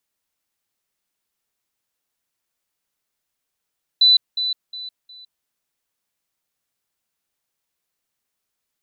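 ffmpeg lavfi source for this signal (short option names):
-f lavfi -i "aevalsrc='pow(10,(-9.5-10*floor(t/0.36))/20)*sin(2*PI*3990*t)*clip(min(mod(t,0.36),0.16-mod(t,0.36))/0.005,0,1)':d=1.44:s=44100"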